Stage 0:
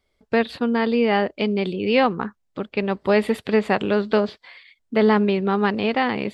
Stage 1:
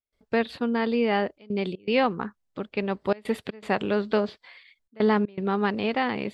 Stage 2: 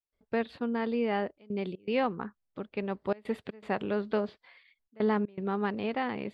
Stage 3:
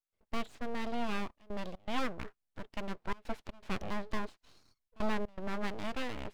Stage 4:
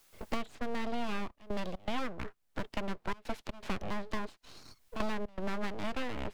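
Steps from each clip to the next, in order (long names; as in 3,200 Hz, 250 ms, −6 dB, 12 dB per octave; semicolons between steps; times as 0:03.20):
gate pattern ".xxxxxxxxxx.xx" 120 BPM −24 dB; level −4.5 dB
high-shelf EQ 3,900 Hz −10.5 dB; level −5.5 dB
full-wave rectification; level −3 dB
multiband upward and downward compressor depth 100%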